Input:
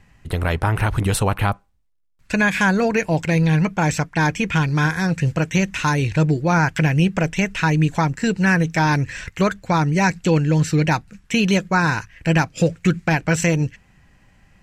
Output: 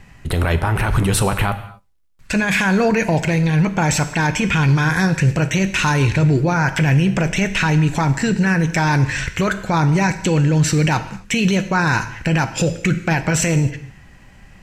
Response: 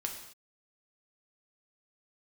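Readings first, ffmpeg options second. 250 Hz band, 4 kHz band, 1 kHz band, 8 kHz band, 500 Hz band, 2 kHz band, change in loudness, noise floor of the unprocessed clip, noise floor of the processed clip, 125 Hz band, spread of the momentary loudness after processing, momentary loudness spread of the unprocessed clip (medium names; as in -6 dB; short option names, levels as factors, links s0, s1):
+1.5 dB, +3.5 dB, +1.0 dB, +5.5 dB, +1.0 dB, +1.5 dB, +2.0 dB, -56 dBFS, -45 dBFS, +2.5 dB, 5 LU, 5 LU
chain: -filter_complex "[0:a]alimiter=limit=0.133:level=0:latency=1:release=20,asplit=2[s0][s1];[1:a]atrim=start_sample=2205[s2];[s1][s2]afir=irnorm=-1:irlink=0,volume=0.841[s3];[s0][s3]amix=inputs=2:normalize=0,volume=1.5"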